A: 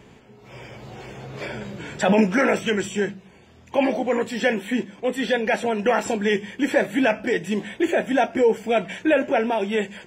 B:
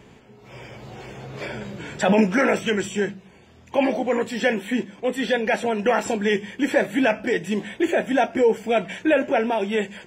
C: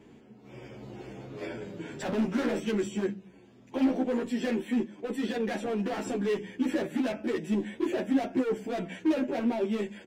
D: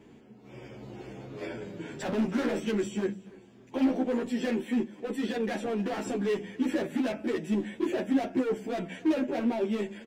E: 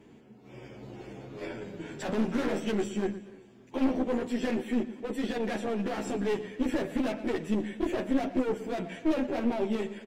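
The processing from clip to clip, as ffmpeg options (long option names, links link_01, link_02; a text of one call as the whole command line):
ffmpeg -i in.wav -af anull out.wav
ffmpeg -i in.wav -filter_complex "[0:a]asoftclip=type=hard:threshold=-22dB,equalizer=frequency=290:width_type=o:width=1.3:gain=12,asplit=2[link_01][link_02];[link_02]adelay=10.3,afreqshift=-0.41[link_03];[link_01][link_03]amix=inputs=2:normalize=1,volume=-7.5dB" out.wav
ffmpeg -i in.wav -af "aecho=1:1:288|576|864:0.075|0.0277|0.0103" out.wav
ffmpeg -i in.wav -filter_complex "[0:a]asplit=2[link_01][link_02];[link_02]adelay=118,lowpass=frequency=5000:poles=1,volume=-14dB,asplit=2[link_03][link_04];[link_04]adelay=118,lowpass=frequency=5000:poles=1,volume=0.42,asplit=2[link_05][link_06];[link_06]adelay=118,lowpass=frequency=5000:poles=1,volume=0.42,asplit=2[link_07][link_08];[link_08]adelay=118,lowpass=frequency=5000:poles=1,volume=0.42[link_09];[link_01][link_03][link_05][link_07][link_09]amix=inputs=5:normalize=0,aeval=exprs='(tanh(11.2*val(0)+0.65)-tanh(0.65))/11.2':channel_layout=same,volume=3dB" -ar 44100 -c:a libmp3lame -b:a 112k out.mp3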